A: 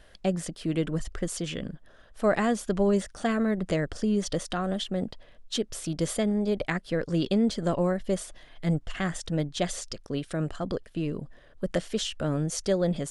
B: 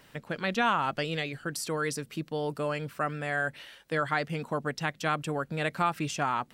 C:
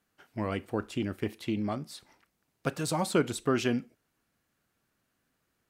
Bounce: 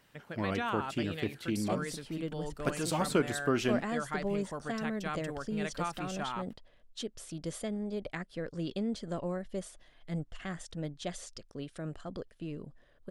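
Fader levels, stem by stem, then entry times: -10.0 dB, -9.0 dB, -2.0 dB; 1.45 s, 0.00 s, 0.00 s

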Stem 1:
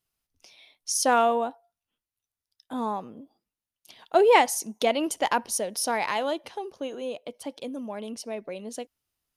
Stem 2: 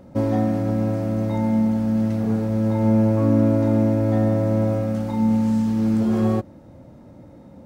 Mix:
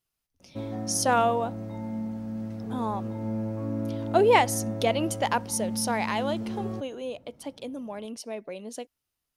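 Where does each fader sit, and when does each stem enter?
-1.5 dB, -13.5 dB; 0.00 s, 0.40 s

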